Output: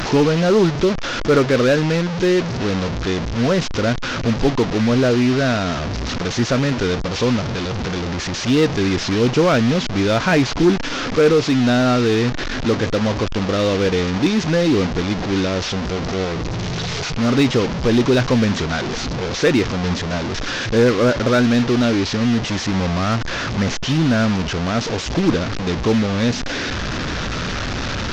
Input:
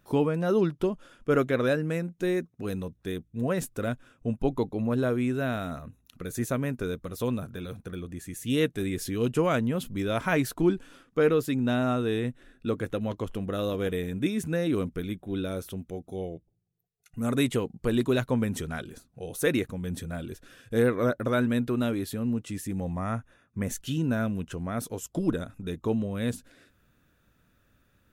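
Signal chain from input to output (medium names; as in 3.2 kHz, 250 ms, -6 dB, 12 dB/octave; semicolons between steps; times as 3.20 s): one-bit delta coder 32 kbps, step -29 dBFS; in parallel at -7 dB: wavefolder -24 dBFS; on the sum: trim +8.5 dB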